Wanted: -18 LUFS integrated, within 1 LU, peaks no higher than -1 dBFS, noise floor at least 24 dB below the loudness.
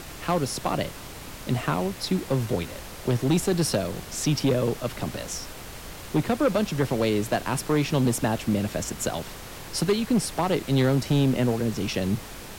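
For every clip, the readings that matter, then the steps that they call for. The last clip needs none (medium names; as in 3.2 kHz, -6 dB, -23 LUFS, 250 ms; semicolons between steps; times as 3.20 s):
clipped samples 1.4%; clipping level -16.0 dBFS; noise floor -40 dBFS; noise floor target -50 dBFS; loudness -26.0 LUFS; peak level -16.0 dBFS; loudness target -18.0 LUFS
-> clip repair -16 dBFS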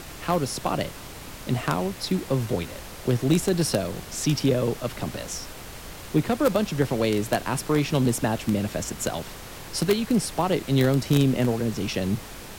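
clipped samples 0.0%; noise floor -40 dBFS; noise floor target -50 dBFS
-> noise print and reduce 10 dB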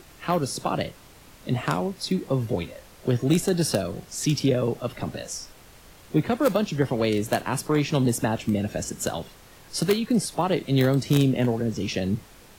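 noise floor -50 dBFS; loudness -25.5 LUFS; peak level -7.0 dBFS; loudness target -18.0 LUFS
-> trim +7.5 dB; peak limiter -1 dBFS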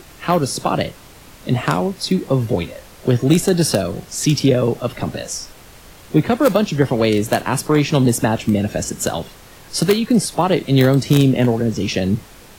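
loudness -18.0 LUFS; peak level -1.0 dBFS; noise floor -43 dBFS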